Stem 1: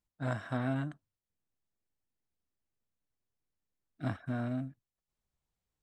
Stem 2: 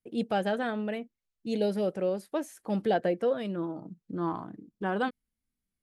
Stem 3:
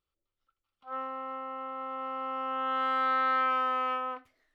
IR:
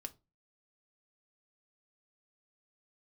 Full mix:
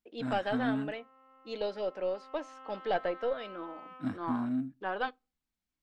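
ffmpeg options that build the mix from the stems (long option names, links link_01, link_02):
-filter_complex "[0:a]equalizer=frequency=125:width_type=o:width=1:gain=-7,equalizer=frequency=250:width_type=o:width=1:gain=11,equalizer=frequency=500:width_type=o:width=1:gain=-9,volume=-5dB,asplit=3[link_01][link_02][link_03];[link_02]volume=-9.5dB[link_04];[1:a]highpass=530,aeval=exprs='0.133*(cos(1*acos(clip(val(0)/0.133,-1,1)))-cos(1*PI/2))+0.0237*(cos(2*acos(clip(val(0)/0.133,-1,1)))-cos(2*PI/2))':channel_layout=same,lowpass=frequency=5300:width=0.5412,lowpass=frequency=5300:width=1.3066,volume=-3.5dB,asplit=2[link_05][link_06];[link_06]volume=-6.5dB[link_07];[2:a]acompressor=threshold=-29dB:ratio=6,volume=-19dB,asplit=2[link_08][link_09];[link_09]volume=-5.5dB[link_10];[link_03]apad=whole_len=200466[link_11];[link_08][link_11]sidechaincompress=threshold=-47dB:ratio=4:attack=16:release=1340[link_12];[3:a]atrim=start_sample=2205[link_13];[link_04][link_07][link_10]amix=inputs=3:normalize=0[link_14];[link_14][link_13]afir=irnorm=-1:irlink=0[link_15];[link_01][link_05][link_12][link_15]amix=inputs=4:normalize=0"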